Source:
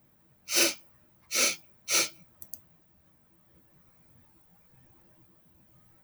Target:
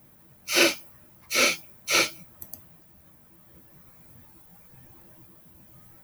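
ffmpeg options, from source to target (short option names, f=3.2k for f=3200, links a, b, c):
-filter_complex "[0:a]acrossover=split=4300[a][b];[b]acompressor=threshold=-44dB:ratio=4:attack=1:release=60[c];[a][c]amix=inputs=2:normalize=0,equalizer=f=12k:w=1.3:g=10.5,volume=8dB"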